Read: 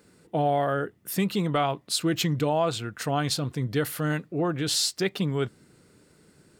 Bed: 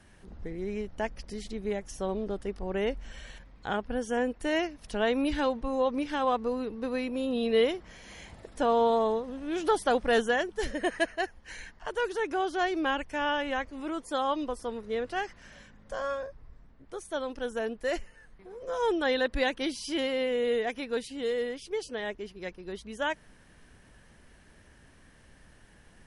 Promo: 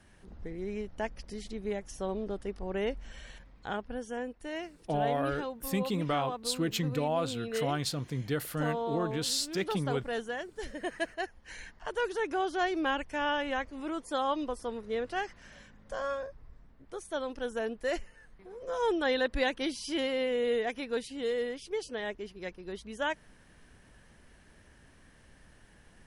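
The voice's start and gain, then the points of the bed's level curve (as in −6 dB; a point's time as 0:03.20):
4.55 s, −6.0 dB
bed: 0:03.51 −2.5 dB
0:04.40 −10 dB
0:10.32 −10 dB
0:11.69 −1.5 dB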